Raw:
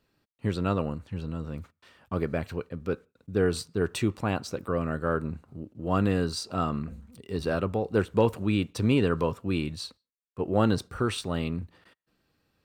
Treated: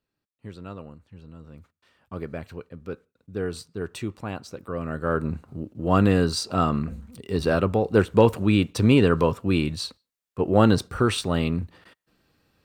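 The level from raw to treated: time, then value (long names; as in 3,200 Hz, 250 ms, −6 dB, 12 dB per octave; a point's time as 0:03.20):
0:01.19 −11.5 dB
0:02.24 −4.5 dB
0:04.62 −4.5 dB
0:05.33 +6 dB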